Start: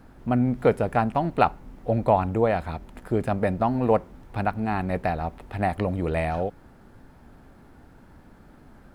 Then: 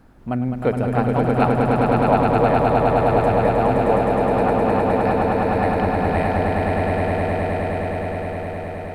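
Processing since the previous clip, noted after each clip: swelling echo 0.104 s, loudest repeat 8, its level -4 dB; gain -1 dB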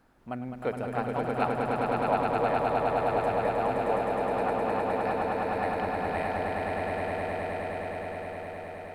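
low shelf 310 Hz -11 dB; gain -7 dB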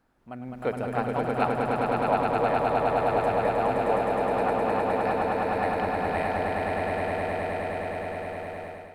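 AGC gain up to 9 dB; gain -6 dB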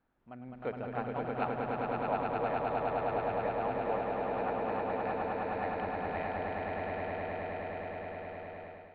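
LPF 3700 Hz 24 dB/oct; gain -8.5 dB

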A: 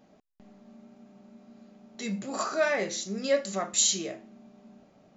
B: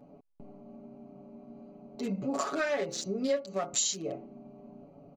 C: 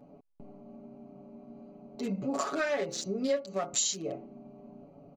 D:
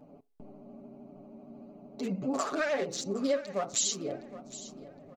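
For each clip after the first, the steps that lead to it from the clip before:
Wiener smoothing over 25 samples; comb 7.1 ms, depth 79%; compressor 4:1, threshold -34 dBFS, peak gain reduction 16 dB; gain +5 dB
nothing audible
vibrato 13 Hz 80 cents; feedback echo 0.764 s, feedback 31%, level -16 dB; on a send at -19 dB: reverb RT60 0.35 s, pre-delay 4 ms

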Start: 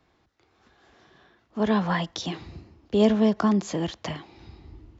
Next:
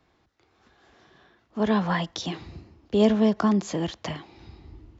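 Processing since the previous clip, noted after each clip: nothing audible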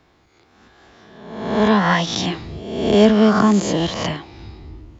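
spectral swells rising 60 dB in 0.97 s; gain +6.5 dB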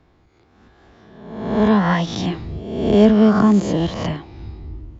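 tilt -2 dB/oct; gain -3 dB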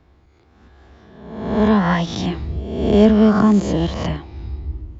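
bell 69 Hz +14 dB 0.25 oct

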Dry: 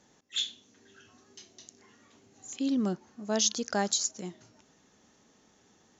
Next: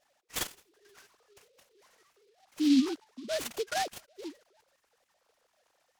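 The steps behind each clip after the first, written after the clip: sine-wave speech; noise-modulated delay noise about 3700 Hz, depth 0.085 ms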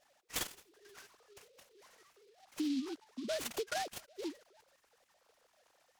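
compressor 6:1, threshold -36 dBFS, peak gain reduction 15 dB; gain +1.5 dB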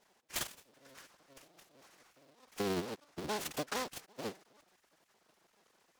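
cycle switcher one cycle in 3, inverted

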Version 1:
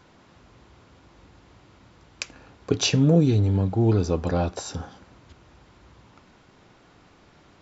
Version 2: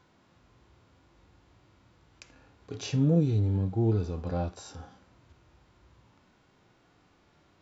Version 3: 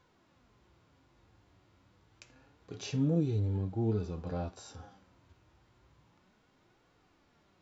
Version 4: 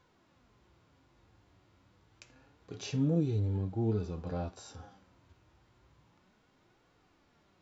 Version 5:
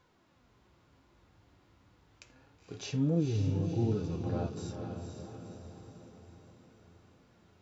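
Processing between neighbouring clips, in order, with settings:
harmonic-percussive split percussive -14 dB; gain -5 dB
flange 0.29 Hz, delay 1.7 ms, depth 9.7 ms, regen +59%
nothing audible
diffused feedback echo 0.499 s, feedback 54%, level -6 dB

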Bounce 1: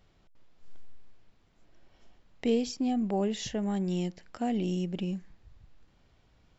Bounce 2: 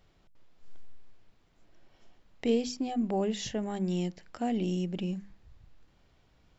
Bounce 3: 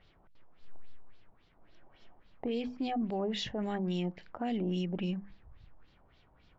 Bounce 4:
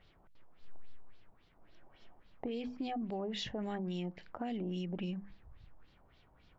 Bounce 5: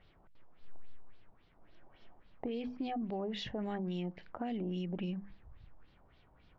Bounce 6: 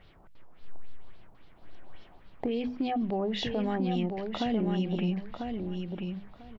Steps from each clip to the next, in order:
notches 50/100/150/200/250 Hz
LFO low-pass sine 3.6 Hz 840–4400 Hz; limiter -26.5 dBFS, peak gain reduction 9.5 dB
compressor, threshold -34 dBFS, peak gain reduction 5.5 dB; gain -1 dB
air absorption 120 m; gain +1 dB
hard clip -29 dBFS, distortion -40 dB; on a send: feedback echo 0.995 s, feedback 18%, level -5.5 dB; on the sum: gain +7.5 dB

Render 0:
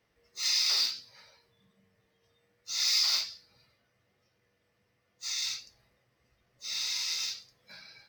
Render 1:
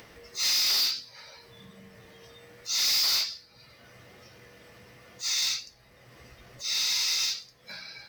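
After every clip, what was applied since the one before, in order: notches 50/100/150/200 Hz; upward compressor, threshold -45 dBFS; hard clip -29.5 dBFS, distortion -8 dB; gain +7 dB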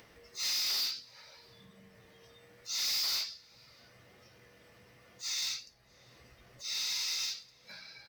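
outdoor echo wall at 110 m, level -22 dB; gain -7.5 dB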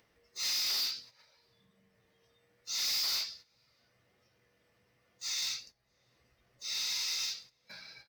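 gate -52 dBFS, range -12 dB

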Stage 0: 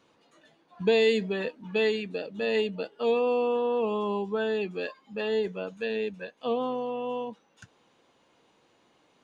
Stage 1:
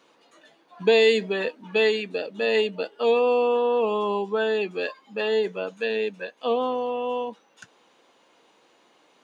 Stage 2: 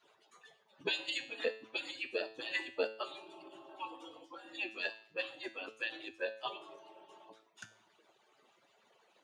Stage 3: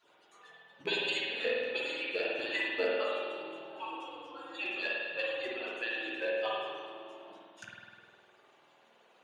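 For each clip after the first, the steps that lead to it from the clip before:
Bessel high-pass 320 Hz, order 2; gain +6 dB
median-filter separation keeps percussive; resonator 110 Hz, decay 0.52 s, harmonics all, mix 70%; gain +4 dB
rattling part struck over -53 dBFS, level -36 dBFS; reverb RT60 1.8 s, pre-delay 49 ms, DRR -4.5 dB

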